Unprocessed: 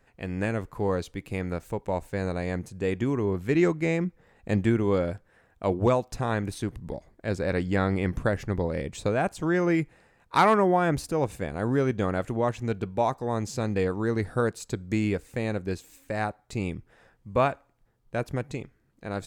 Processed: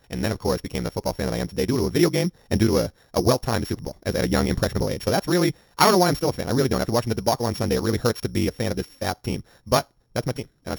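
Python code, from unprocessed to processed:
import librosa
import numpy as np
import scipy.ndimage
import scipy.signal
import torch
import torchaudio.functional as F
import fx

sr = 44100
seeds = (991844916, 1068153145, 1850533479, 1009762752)

y = np.r_[np.sort(x[:len(x) // 8 * 8].reshape(-1, 8), axis=1).ravel(), x[len(x) // 8 * 8:]]
y = fx.stretch_grains(y, sr, factor=0.56, grain_ms=42.0)
y = y * librosa.db_to_amplitude(5.5)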